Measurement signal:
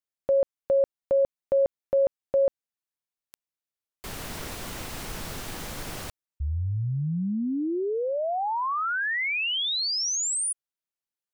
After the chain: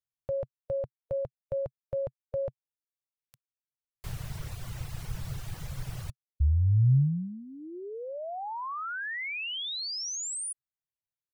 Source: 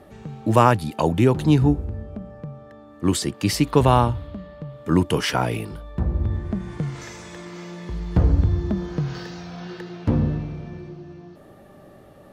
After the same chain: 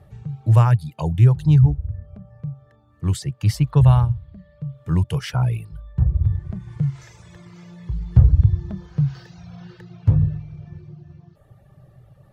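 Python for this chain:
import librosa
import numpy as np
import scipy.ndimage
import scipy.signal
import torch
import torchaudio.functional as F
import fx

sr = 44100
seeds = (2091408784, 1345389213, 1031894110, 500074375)

y = fx.dereverb_blind(x, sr, rt60_s=0.9)
y = fx.low_shelf_res(y, sr, hz=180.0, db=11.0, q=3.0)
y = F.gain(torch.from_numpy(y), -7.5).numpy()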